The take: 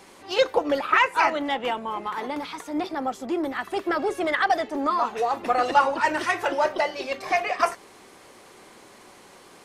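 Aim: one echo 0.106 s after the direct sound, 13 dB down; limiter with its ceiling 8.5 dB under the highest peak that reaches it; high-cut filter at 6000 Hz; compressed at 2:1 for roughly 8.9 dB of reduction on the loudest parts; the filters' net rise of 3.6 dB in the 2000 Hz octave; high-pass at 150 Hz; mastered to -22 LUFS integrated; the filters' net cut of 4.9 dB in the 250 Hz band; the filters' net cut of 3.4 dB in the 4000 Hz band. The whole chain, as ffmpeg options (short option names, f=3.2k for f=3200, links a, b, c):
-af "highpass=150,lowpass=6k,equalizer=f=250:t=o:g=-6.5,equalizer=f=2k:t=o:g=6,equalizer=f=4k:t=o:g=-7.5,acompressor=threshold=-29dB:ratio=2,alimiter=limit=-21dB:level=0:latency=1,aecho=1:1:106:0.224,volume=9.5dB"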